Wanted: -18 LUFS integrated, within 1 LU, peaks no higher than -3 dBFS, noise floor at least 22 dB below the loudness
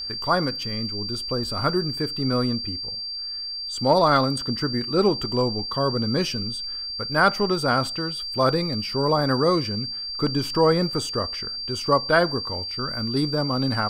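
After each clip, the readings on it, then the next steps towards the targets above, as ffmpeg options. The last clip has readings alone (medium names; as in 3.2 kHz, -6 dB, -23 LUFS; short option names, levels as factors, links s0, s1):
steady tone 4.7 kHz; tone level -29 dBFS; loudness -23.5 LUFS; peak level -5.5 dBFS; loudness target -18.0 LUFS
-> -af "bandreject=f=4700:w=30"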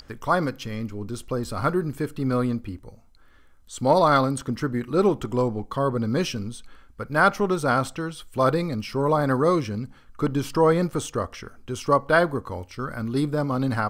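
steady tone not found; loudness -24.0 LUFS; peak level -5.5 dBFS; loudness target -18.0 LUFS
-> -af "volume=2,alimiter=limit=0.708:level=0:latency=1"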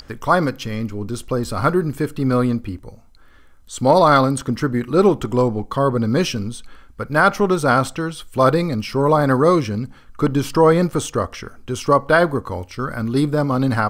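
loudness -18.5 LUFS; peak level -3.0 dBFS; noise floor -46 dBFS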